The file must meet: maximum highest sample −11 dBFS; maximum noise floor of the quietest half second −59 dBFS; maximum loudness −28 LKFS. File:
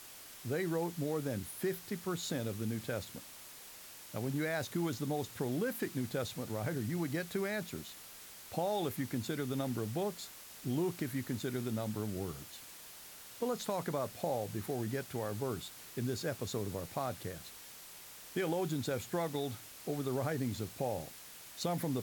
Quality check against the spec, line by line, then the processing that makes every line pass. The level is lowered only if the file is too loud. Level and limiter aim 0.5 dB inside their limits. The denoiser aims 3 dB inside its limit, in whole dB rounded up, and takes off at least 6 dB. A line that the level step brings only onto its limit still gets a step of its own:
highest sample −21.5 dBFS: in spec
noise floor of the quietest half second −52 dBFS: out of spec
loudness −38.0 LKFS: in spec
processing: broadband denoise 10 dB, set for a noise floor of −52 dBFS

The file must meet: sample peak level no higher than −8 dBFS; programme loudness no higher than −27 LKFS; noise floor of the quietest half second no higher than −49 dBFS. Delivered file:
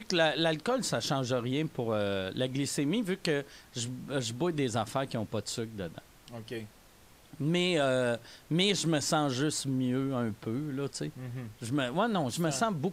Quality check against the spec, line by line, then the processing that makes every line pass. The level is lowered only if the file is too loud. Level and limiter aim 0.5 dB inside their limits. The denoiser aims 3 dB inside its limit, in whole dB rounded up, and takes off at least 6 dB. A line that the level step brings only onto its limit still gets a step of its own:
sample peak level −13.0 dBFS: in spec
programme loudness −31.5 LKFS: in spec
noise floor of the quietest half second −58 dBFS: in spec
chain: no processing needed

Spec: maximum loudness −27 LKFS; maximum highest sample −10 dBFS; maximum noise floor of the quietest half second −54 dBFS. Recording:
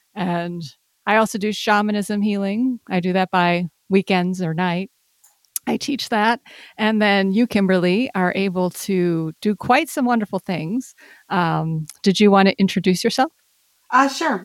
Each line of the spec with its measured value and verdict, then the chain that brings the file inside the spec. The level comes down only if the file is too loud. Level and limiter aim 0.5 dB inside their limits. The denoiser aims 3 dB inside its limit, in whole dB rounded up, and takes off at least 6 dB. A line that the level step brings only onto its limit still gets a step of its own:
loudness −19.5 LKFS: out of spec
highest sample −4.0 dBFS: out of spec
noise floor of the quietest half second −62 dBFS: in spec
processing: level −8 dB

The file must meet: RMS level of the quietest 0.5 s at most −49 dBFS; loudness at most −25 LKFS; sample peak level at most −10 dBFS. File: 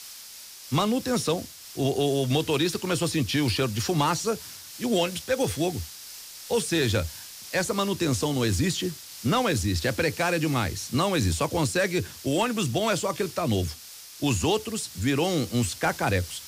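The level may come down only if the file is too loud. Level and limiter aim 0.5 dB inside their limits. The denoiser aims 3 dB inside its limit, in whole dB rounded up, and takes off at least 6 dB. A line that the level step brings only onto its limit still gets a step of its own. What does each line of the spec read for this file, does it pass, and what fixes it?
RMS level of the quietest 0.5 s −44 dBFS: out of spec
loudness −26.0 LKFS: in spec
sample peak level −14.0 dBFS: in spec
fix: broadband denoise 8 dB, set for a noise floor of −44 dBFS

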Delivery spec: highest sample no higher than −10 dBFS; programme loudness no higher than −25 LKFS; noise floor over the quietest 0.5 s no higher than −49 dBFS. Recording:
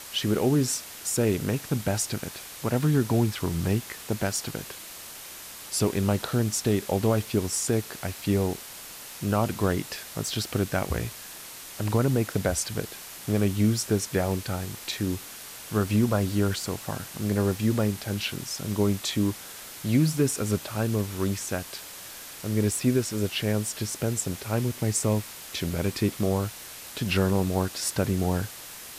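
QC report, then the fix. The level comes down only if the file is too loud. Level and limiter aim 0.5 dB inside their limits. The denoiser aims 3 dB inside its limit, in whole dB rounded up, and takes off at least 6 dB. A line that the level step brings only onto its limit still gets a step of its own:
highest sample −11.5 dBFS: in spec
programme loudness −27.5 LKFS: in spec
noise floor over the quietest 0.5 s −42 dBFS: out of spec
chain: broadband denoise 10 dB, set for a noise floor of −42 dBFS

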